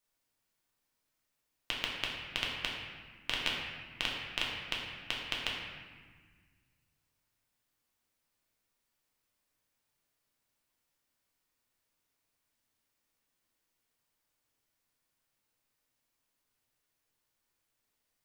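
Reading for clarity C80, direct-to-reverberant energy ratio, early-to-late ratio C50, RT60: 2.5 dB, -3.5 dB, 1.0 dB, 1.5 s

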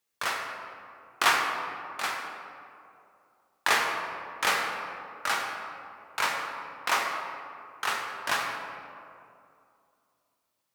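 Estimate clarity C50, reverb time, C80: 2.5 dB, 2.5 s, 4.0 dB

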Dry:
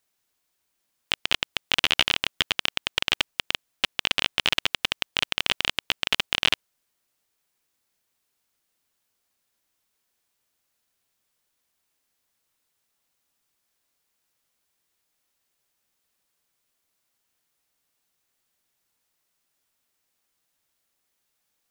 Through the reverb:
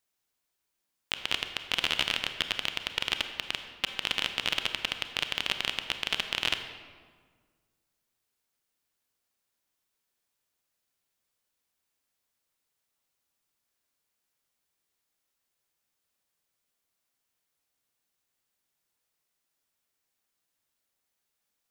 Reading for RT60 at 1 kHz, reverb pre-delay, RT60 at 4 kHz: 1.6 s, 27 ms, 1.0 s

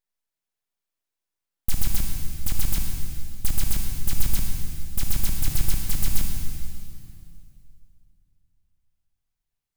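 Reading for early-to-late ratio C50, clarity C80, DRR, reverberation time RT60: 2.0 dB, 3.5 dB, 1.5 dB, 2.5 s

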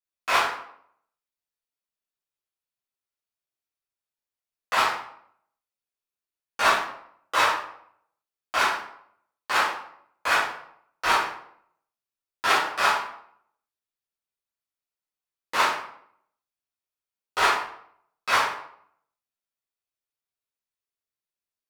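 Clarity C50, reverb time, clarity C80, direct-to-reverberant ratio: 3.0 dB, 0.65 s, 7.5 dB, -12.0 dB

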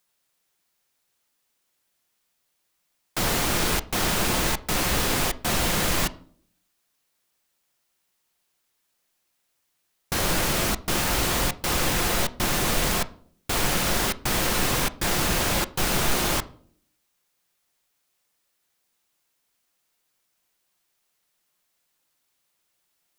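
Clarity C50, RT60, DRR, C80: 19.5 dB, 0.55 s, 11.5 dB, 23.5 dB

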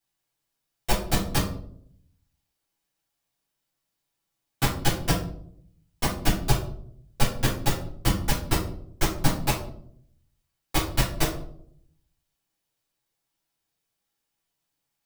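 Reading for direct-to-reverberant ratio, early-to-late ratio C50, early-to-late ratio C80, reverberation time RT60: -9.0 dB, 6.5 dB, 11.0 dB, 0.65 s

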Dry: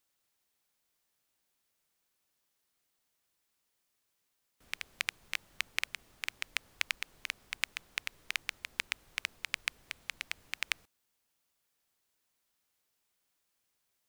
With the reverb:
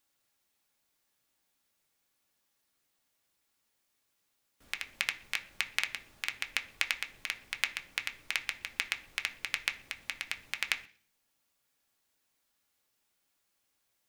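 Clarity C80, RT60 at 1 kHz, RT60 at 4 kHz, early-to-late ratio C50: 20.0 dB, 0.40 s, 0.50 s, 16.0 dB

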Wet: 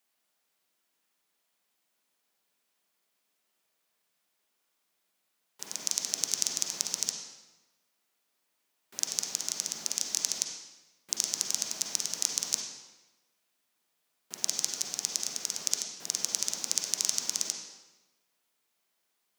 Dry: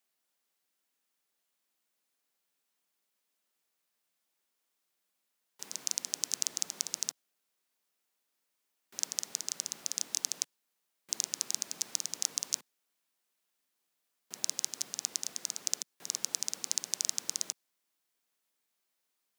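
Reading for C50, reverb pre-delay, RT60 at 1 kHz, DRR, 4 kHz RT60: 2.5 dB, 39 ms, 1.1 s, 1.0 dB, 0.95 s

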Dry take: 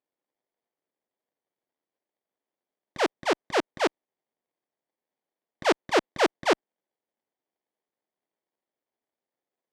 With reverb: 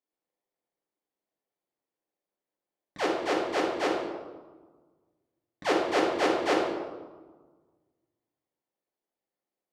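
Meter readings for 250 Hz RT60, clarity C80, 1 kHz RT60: 1.8 s, 4.5 dB, 1.4 s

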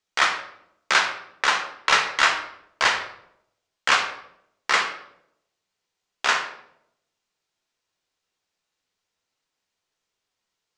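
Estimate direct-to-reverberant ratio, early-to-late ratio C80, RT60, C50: 2.5 dB, 10.5 dB, 0.75 s, 8.0 dB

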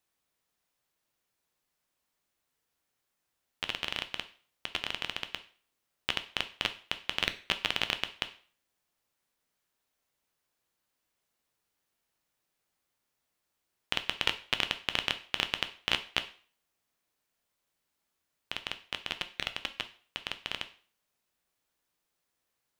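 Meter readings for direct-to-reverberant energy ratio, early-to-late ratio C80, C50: 9.0 dB, 19.5 dB, 14.5 dB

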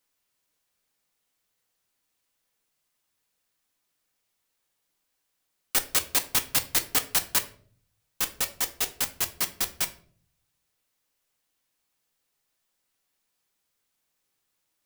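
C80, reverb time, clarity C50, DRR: 19.5 dB, 0.50 s, 15.0 dB, 7.0 dB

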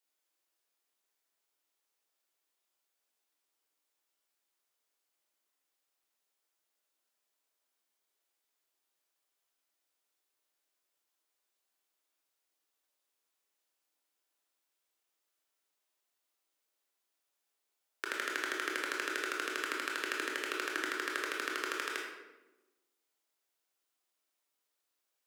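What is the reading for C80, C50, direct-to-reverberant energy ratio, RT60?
4.5 dB, 2.0 dB, -1.5 dB, 1.1 s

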